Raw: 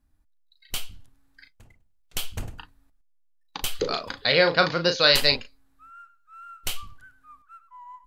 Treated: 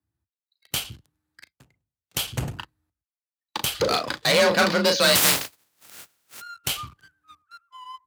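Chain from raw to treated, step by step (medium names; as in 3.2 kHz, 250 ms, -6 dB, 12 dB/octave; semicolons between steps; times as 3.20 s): 5.14–6.40 s: spectral contrast reduction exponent 0.15; one-sided clip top -25 dBFS, bottom -7.5 dBFS; waveshaping leveller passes 3; high-pass 47 Hz; frequency shift +33 Hz; trim -4 dB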